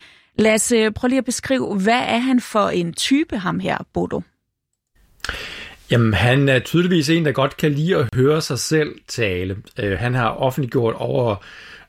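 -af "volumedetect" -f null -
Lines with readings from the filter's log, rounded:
mean_volume: -19.3 dB
max_volume: -5.5 dB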